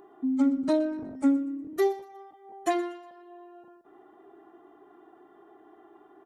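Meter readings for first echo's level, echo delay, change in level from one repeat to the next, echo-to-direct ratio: −18.5 dB, 121 ms, −8.5 dB, −18.0 dB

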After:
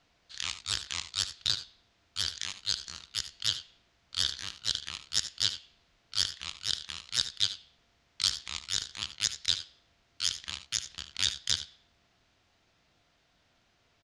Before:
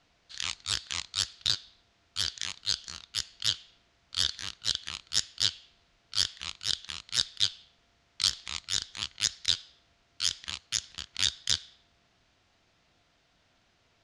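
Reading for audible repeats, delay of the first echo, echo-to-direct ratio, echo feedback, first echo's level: 1, 75 ms, −12.0 dB, repeats not evenly spaced, −13.5 dB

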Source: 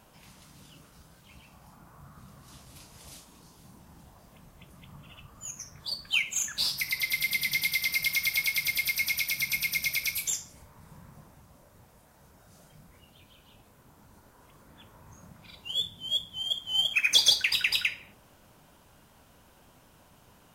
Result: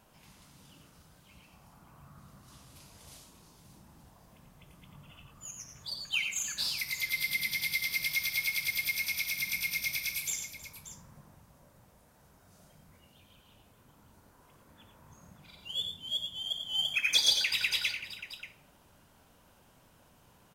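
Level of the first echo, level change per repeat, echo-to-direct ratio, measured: −19.5 dB, repeats not evenly spaced, −5.0 dB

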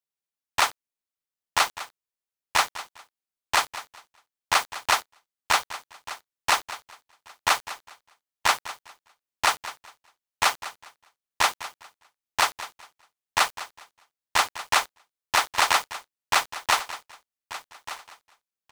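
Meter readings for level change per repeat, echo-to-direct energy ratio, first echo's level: −12.5 dB, −14.5 dB, −15.0 dB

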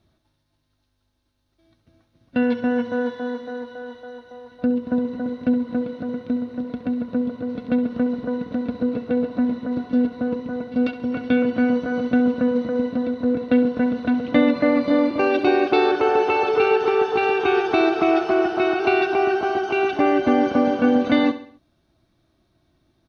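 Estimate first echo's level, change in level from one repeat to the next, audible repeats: −13.0 dB, −7.0 dB, 4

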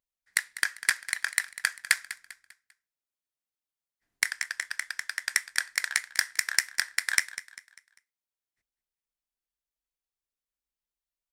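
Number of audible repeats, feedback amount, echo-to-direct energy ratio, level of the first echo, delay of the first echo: 3, 40%, −14.0 dB, −15.0 dB, 198 ms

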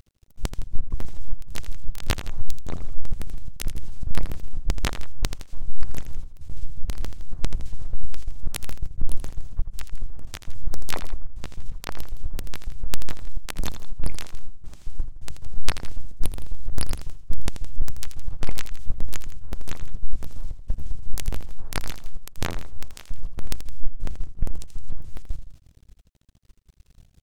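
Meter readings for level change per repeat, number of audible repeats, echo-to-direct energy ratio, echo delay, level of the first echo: −5.5 dB, 2, −9.5 dB, 82 ms, −10.5 dB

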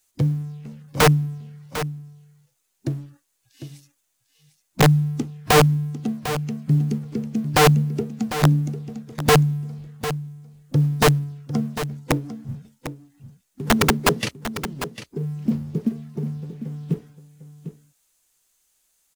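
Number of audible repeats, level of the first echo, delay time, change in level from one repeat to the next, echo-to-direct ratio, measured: 1, −11.5 dB, 750 ms, repeats not evenly spaced, −11.5 dB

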